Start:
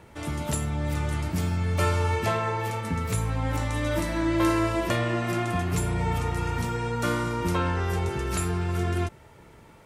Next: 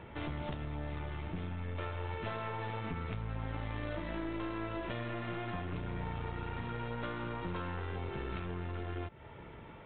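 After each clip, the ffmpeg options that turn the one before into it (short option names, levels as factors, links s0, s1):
-af "acompressor=threshold=0.02:ratio=12,aresample=8000,aeval=exprs='clip(val(0),-1,0.0075)':c=same,aresample=44100,volume=1.12"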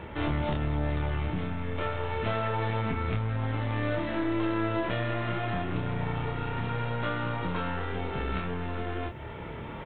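-filter_complex "[0:a]areverse,acompressor=mode=upward:threshold=0.00891:ratio=2.5,areverse,asplit=2[s0][s1];[s1]adelay=27,volume=0.708[s2];[s0][s2]amix=inputs=2:normalize=0,volume=2.11"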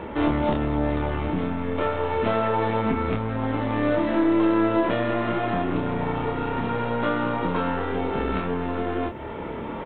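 -af "equalizer=f=125:t=o:w=1:g=-5,equalizer=f=250:t=o:w=1:g=9,equalizer=f=500:t=o:w=1:g=5,equalizer=f=1000:t=o:w=1:g=5,volume=1.26"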